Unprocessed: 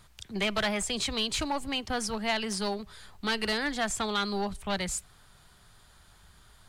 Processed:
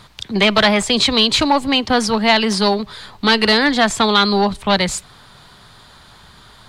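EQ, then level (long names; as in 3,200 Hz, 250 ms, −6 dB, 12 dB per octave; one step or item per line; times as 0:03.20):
graphic EQ with 10 bands 125 Hz +7 dB, 250 Hz +9 dB, 500 Hz +7 dB, 1,000 Hz +9 dB, 2,000 Hz +5 dB, 4,000 Hz +11 dB
+5.5 dB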